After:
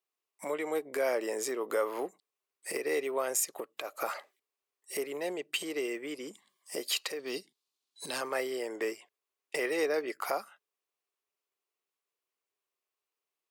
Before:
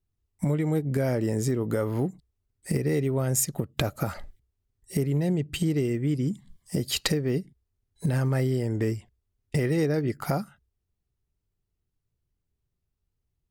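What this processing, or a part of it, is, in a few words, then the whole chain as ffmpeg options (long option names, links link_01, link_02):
laptop speaker: -filter_complex "[0:a]asettb=1/sr,asplit=3[link_01][link_02][link_03];[link_01]atrim=end=7.194[link_04];[link_02]atrim=start=7.19:end=8.21,asetpts=PTS-STARTPTS,afade=type=in:duration=0.004:curve=qsin,afade=type=out:start_time=1.016:duration=0.004:curve=qsin,equalizer=frequency=125:width_type=o:width=1:gain=4,equalizer=frequency=250:width_type=o:width=1:gain=4,equalizer=frequency=500:width_type=o:width=1:gain=-7,equalizer=frequency=2000:width_type=o:width=1:gain=-6,equalizer=frequency=4000:width_type=o:width=1:gain=12,equalizer=frequency=8000:width_type=o:width=1:gain=4[link_05];[link_03]atrim=start=8.206[link_06];[link_04][link_05]acrossfade=duration=0.004:curve1=hsin:curve2=qsin[link_07];[link_07][link_06]acrossfade=duration=0.004:curve1=qsin:curve2=hsin,highpass=frequency=430:width=0.5412,highpass=frequency=430:width=1.3066,equalizer=frequency=1100:width_type=o:width=0.23:gain=8,equalizer=frequency=2500:width_type=o:width=0.54:gain=5,alimiter=limit=-18.5dB:level=0:latency=1:release=287"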